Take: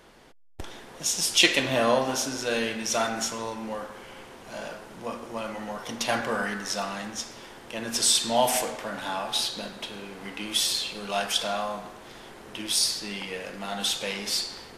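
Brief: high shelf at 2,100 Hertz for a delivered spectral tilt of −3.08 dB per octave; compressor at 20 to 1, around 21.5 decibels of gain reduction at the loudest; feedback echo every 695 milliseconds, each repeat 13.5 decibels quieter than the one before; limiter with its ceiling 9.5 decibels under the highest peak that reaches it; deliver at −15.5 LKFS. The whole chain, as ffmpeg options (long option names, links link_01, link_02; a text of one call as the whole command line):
ffmpeg -i in.wav -af "highshelf=frequency=2100:gain=7.5,acompressor=threshold=-31dB:ratio=20,alimiter=level_in=2.5dB:limit=-24dB:level=0:latency=1,volume=-2.5dB,aecho=1:1:695|1390:0.211|0.0444,volume=21dB" out.wav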